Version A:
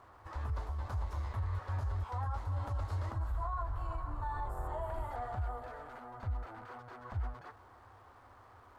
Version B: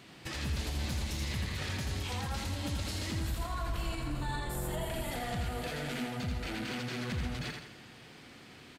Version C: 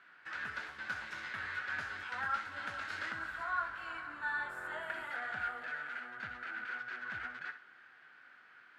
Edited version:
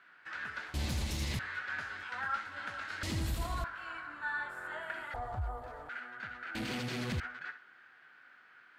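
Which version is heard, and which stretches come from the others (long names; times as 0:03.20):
C
0:00.74–0:01.39: punch in from B
0:03.03–0:03.64: punch in from B
0:05.14–0:05.89: punch in from A
0:06.55–0:07.20: punch in from B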